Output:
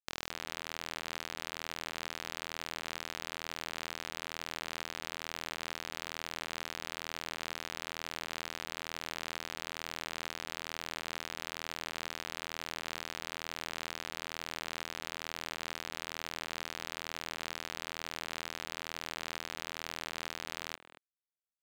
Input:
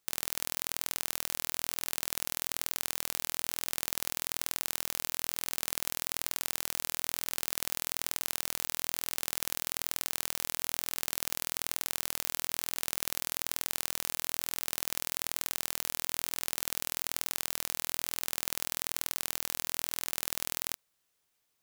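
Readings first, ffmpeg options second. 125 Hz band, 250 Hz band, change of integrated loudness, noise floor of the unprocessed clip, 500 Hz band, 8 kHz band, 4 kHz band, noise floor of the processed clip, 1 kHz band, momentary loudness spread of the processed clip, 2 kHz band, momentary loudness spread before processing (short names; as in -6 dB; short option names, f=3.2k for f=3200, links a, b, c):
+1.5 dB, +1.5 dB, -7.0 dB, -78 dBFS, +1.5 dB, -10.5 dB, -2.0 dB, -58 dBFS, +1.5 dB, 0 LU, +0.5 dB, 0 LU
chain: -filter_complex "[0:a]equalizer=f=10k:t=o:w=0.61:g=-14.5,alimiter=limit=-13dB:level=0:latency=1:release=12,aeval=exprs='sgn(val(0))*max(abs(val(0))-0.00398,0)':c=same,adynamicsmooth=sensitivity=7.5:basefreq=1.4k,asplit=2[a][b];[b]adelay=230,highpass=300,lowpass=3.4k,asoftclip=type=hard:threshold=-33.5dB,volume=-12dB[c];[a][c]amix=inputs=2:normalize=0,volume=6.5dB"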